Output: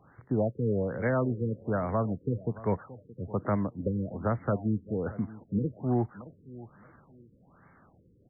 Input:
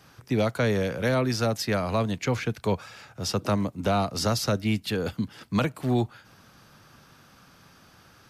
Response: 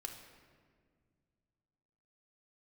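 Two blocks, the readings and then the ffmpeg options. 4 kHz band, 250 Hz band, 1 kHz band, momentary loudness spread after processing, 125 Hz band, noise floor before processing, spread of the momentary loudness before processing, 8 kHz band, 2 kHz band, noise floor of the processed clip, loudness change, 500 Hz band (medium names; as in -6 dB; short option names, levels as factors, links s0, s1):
under -40 dB, -3.0 dB, -6.0 dB, 11 LU, -3.0 dB, -56 dBFS, 5 LU, under -40 dB, -9.5 dB, -62 dBFS, -4.0 dB, -4.0 dB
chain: -af "aecho=1:1:622|1244:0.126|0.0315,afftfilt=real='re*lt(b*sr/1024,500*pow(2300/500,0.5+0.5*sin(2*PI*1.2*pts/sr)))':imag='im*lt(b*sr/1024,500*pow(2300/500,0.5+0.5*sin(2*PI*1.2*pts/sr)))':win_size=1024:overlap=0.75,volume=0.708"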